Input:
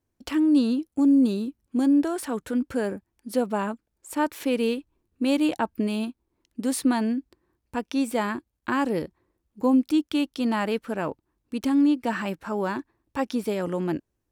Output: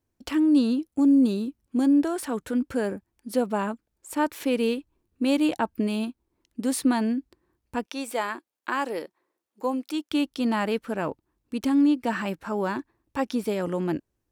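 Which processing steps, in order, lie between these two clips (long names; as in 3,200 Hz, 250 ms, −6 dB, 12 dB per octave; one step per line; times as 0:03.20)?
0:07.86–0:10.11: high-pass filter 460 Hz 12 dB per octave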